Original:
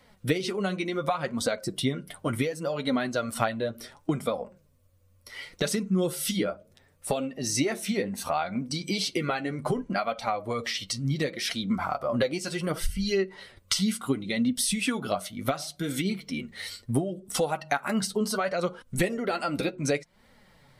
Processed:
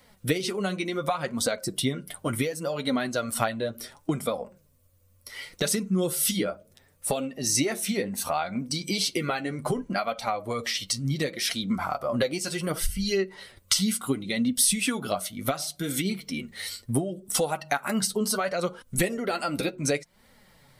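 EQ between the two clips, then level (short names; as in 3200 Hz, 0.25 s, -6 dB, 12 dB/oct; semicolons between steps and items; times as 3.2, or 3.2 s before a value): high shelf 6900 Hz +10 dB; 0.0 dB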